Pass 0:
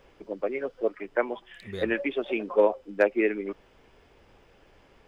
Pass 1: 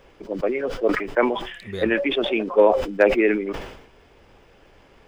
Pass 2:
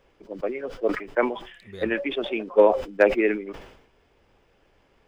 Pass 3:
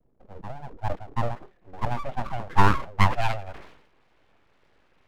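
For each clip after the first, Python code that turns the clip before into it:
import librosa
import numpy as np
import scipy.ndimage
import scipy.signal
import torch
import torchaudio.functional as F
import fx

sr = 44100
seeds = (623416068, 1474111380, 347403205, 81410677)

y1 = fx.sustainer(x, sr, db_per_s=69.0)
y1 = F.gain(torch.from_numpy(y1), 5.0).numpy()
y2 = fx.upward_expand(y1, sr, threshold_db=-30.0, expansion=1.5)
y3 = fx.filter_sweep_lowpass(y2, sr, from_hz=240.0, to_hz=2200.0, start_s=0.33, end_s=3.85, q=1.2)
y3 = fx.vibrato(y3, sr, rate_hz=2.2, depth_cents=96.0)
y3 = np.abs(y3)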